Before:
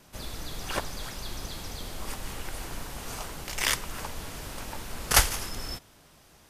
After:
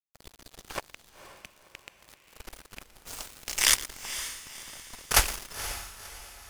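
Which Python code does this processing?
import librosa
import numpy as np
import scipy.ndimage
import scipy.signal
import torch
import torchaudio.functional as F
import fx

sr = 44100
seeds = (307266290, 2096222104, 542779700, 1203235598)

y = fx.rattle_buzz(x, sr, strikes_db=-33.0, level_db=-20.0)
y = fx.highpass(y, sr, hz=52.0, slope=12, at=(0.77, 2.31))
y = fx.peak_eq(y, sr, hz=8400.0, db=9.5, octaves=2.7, at=(3.06, 3.75), fade=0.02)
y = fx.echo_feedback(y, sr, ms=116, feedback_pct=32, wet_db=-13.5)
y = np.sign(y) * np.maximum(np.abs(y) - 10.0 ** (-31.5 / 20.0), 0.0)
y = fx.dynamic_eq(y, sr, hz=130.0, q=1.2, threshold_db=-57.0, ratio=4.0, max_db=-6)
y = fx.echo_diffused(y, sr, ms=510, feedback_pct=41, wet_db=-11.5)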